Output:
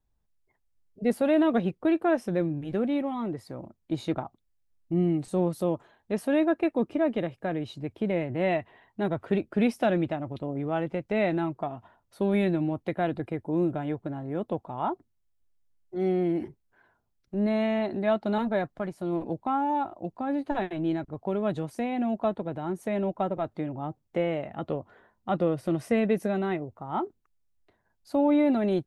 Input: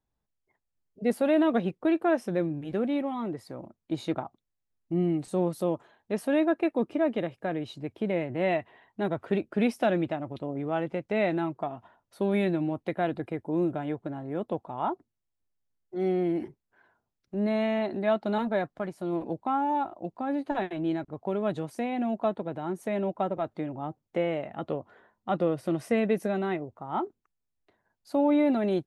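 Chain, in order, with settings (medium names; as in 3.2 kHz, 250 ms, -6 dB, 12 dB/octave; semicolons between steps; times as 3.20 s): bass shelf 87 Hz +12 dB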